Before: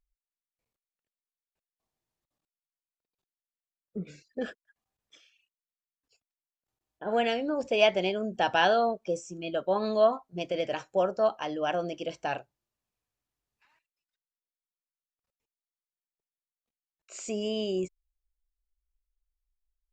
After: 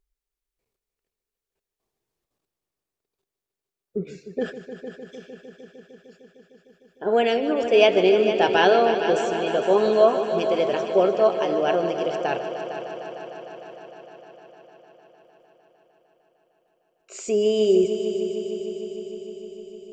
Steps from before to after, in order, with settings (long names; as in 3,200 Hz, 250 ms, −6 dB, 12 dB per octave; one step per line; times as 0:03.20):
parametric band 400 Hz +12 dB 0.35 octaves
echo machine with several playback heads 152 ms, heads all three, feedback 72%, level −14 dB
level +4 dB